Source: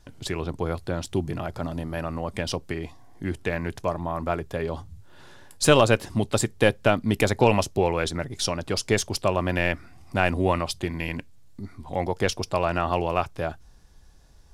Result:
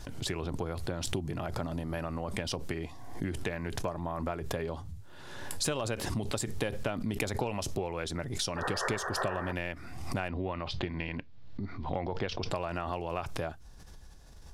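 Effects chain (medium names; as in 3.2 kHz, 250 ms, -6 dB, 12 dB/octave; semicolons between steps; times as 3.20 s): 10.28–12.51 s: low-pass 4.3 kHz 24 dB/octave; compression 6:1, threshold -31 dBFS, peak gain reduction 18 dB; 8.56–9.53 s: painted sound noise 360–1900 Hz -40 dBFS; swell ahead of each attack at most 41 dB/s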